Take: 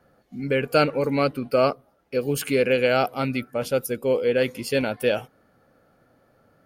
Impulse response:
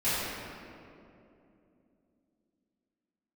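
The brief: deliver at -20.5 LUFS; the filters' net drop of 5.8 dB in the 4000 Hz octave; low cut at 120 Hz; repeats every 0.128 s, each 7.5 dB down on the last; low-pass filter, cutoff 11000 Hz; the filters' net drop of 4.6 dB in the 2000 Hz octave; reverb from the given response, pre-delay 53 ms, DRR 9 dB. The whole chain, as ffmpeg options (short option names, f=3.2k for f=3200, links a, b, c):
-filter_complex "[0:a]highpass=120,lowpass=11k,equalizer=f=2k:t=o:g=-4.5,equalizer=f=4k:t=o:g=-6,aecho=1:1:128|256|384|512|640:0.422|0.177|0.0744|0.0312|0.0131,asplit=2[a][b];[1:a]atrim=start_sample=2205,adelay=53[c];[b][c]afir=irnorm=-1:irlink=0,volume=-21dB[d];[a][d]amix=inputs=2:normalize=0,volume=2.5dB"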